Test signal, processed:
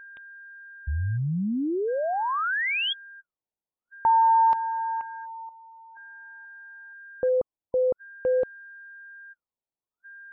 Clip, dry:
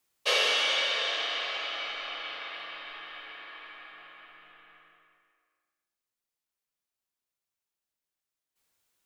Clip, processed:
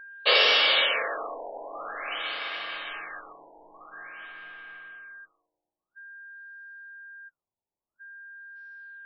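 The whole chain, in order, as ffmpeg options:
-af "aeval=exprs='val(0)+0.00398*sin(2*PI*1600*n/s)':c=same,afftfilt=real='re*lt(b*sr/1024,980*pow(5800/980,0.5+0.5*sin(2*PI*0.49*pts/sr)))':imag='im*lt(b*sr/1024,980*pow(5800/980,0.5+0.5*sin(2*PI*0.49*pts/sr)))':win_size=1024:overlap=0.75,volume=1.88"

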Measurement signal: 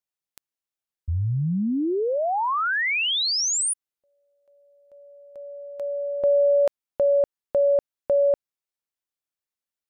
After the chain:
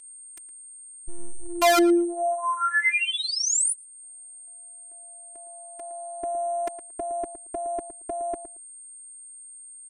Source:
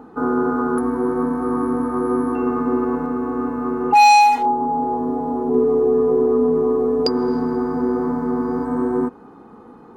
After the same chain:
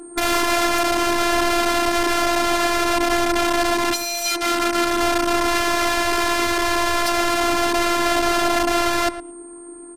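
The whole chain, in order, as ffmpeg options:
-filter_complex "[0:a]equalizer=f=125:t=o:w=1:g=6,equalizer=f=250:t=o:w=1:g=10,equalizer=f=2000:t=o:w=1:g=7,equalizer=f=4000:t=o:w=1:g=-4,equalizer=f=8000:t=o:w=1:g=9,aeval=exprs='(mod(3.55*val(0)+1,2)-1)/3.55':c=same,aeval=exprs='val(0)+0.0316*sin(2*PI*8500*n/s)':c=same,afftfilt=real='hypot(re,im)*cos(PI*b)':imag='0':win_size=512:overlap=0.75,asplit=2[s0][s1];[s1]adelay=113,lowpass=f=1600:p=1,volume=0.266,asplit=2[s2][s3];[s3]adelay=113,lowpass=f=1600:p=1,volume=0.16[s4];[s2][s4]amix=inputs=2:normalize=0[s5];[s0][s5]amix=inputs=2:normalize=0,aresample=32000,aresample=44100,adynamicequalizer=threshold=0.0141:dfrequency=7800:dqfactor=0.7:tfrequency=7800:tqfactor=0.7:attack=5:release=100:ratio=0.333:range=2.5:mode=cutabove:tftype=highshelf,volume=0.891"

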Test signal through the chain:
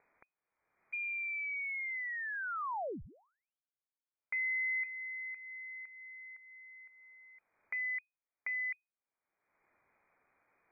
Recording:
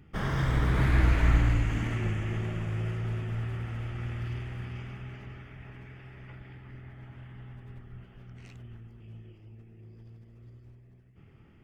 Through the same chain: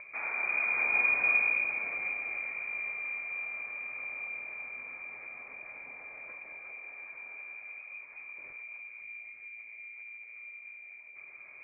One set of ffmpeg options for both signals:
-af "acompressor=mode=upward:threshold=0.0251:ratio=2.5,lowpass=f=2100:t=q:w=0.5098,lowpass=f=2100:t=q:w=0.6013,lowpass=f=2100:t=q:w=0.9,lowpass=f=2100:t=q:w=2.563,afreqshift=-2500,equalizer=f=1800:t=o:w=0.77:g=-2.5,volume=0.596"

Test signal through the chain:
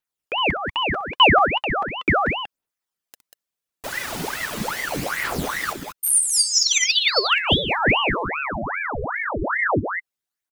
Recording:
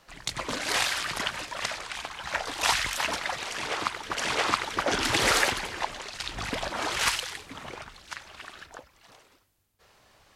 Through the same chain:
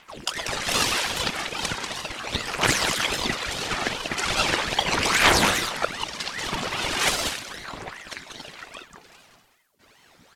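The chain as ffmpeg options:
-af "aphaser=in_gain=1:out_gain=1:delay=2.2:decay=0.67:speed=0.38:type=triangular,aecho=1:1:63|190:0.188|0.501,aeval=exprs='val(0)*sin(2*PI*1100*n/s+1100*0.85/2.5*sin(2*PI*2.5*n/s))':c=same,volume=1.5"

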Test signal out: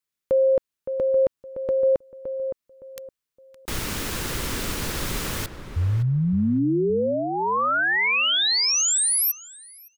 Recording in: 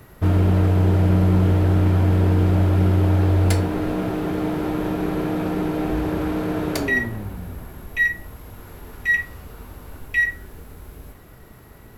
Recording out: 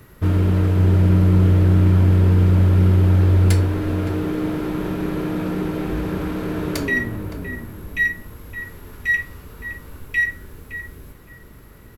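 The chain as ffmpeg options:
-filter_complex "[0:a]equalizer=f=730:t=o:w=0.51:g=-8,asplit=2[s0][s1];[s1]adelay=565,lowpass=f=1500:p=1,volume=0.376,asplit=2[s2][s3];[s3]adelay=565,lowpass=f=1500:p=1,volume=0.27,asplit=2[s4][s5];[s5]adelay=565,lowpass=f=1500:p=1,volume=0.27[s6];[s2][s4][s6]amix=inputs=3:normalize=0[s7];[s0][s7]amix=inputs=2:normalize=0"

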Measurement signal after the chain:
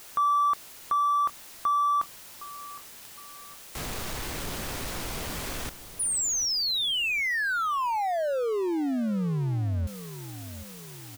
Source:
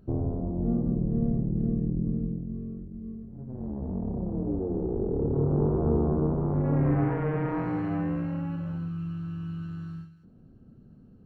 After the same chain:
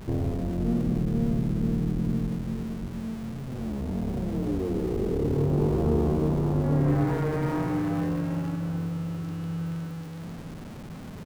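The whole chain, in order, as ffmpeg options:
-filter_complex "[0:a]aeval=exprs='val(0)+0.5*0.015*sgn(val(0))':c=same,asplit=2[s0][s1];[s1]adelay=762,lowpass=f=1300:p=1,volume=0.2,asplit=2[s2][s3];[s3]adelay=762,lowpass=f=1300:p=1,volume=0.53,asplit=2[s4][s5];[s5]adelay=762,lowpass=f=1300:p=1,volume=0.53,asplit=2[s6][s7];[s7]adelay=762,lowpass=f=1300:p=1,volume=0.53,asplit=2[s8][s9];[s9]adelay=762,lowpass=f=1300:p=1,volume=0.53[s10];[s0][s2][s4][s6][s8][s10]amix=inputs=6:normalize=0"

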